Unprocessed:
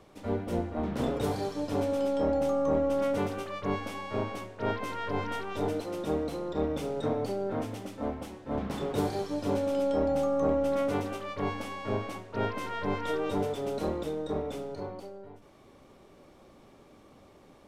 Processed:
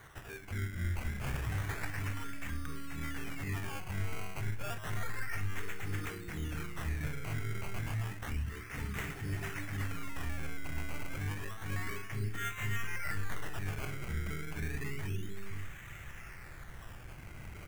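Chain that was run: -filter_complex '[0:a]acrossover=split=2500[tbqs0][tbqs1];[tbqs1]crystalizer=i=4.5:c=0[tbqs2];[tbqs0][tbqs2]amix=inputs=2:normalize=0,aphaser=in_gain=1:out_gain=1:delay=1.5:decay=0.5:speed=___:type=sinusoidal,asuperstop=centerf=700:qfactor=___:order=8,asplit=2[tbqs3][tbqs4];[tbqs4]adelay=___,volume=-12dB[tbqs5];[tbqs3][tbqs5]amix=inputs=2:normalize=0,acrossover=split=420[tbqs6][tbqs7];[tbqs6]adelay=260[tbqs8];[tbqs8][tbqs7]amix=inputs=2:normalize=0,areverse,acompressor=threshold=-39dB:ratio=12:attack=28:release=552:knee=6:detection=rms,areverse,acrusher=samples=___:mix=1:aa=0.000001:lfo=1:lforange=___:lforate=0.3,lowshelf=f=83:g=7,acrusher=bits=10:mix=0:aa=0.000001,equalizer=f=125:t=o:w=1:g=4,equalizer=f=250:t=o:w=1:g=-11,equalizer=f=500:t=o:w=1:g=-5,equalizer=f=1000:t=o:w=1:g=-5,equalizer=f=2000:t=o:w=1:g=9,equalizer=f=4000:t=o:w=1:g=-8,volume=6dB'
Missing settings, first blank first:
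0.34, 0.98, 44, 17, 17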